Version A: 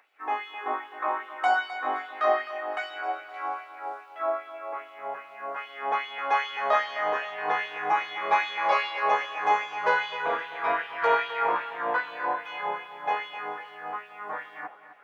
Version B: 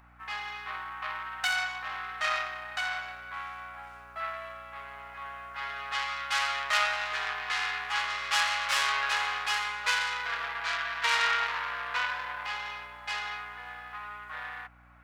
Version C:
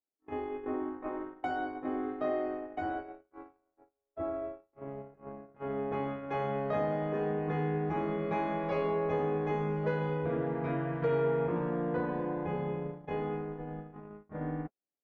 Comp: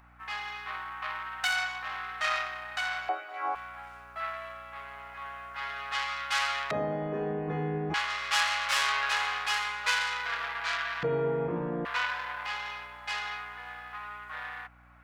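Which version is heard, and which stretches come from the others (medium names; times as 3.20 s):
B
3.09–3.55 s: from A
6.71–7.94 s: from C
11.03–11.85 s: from C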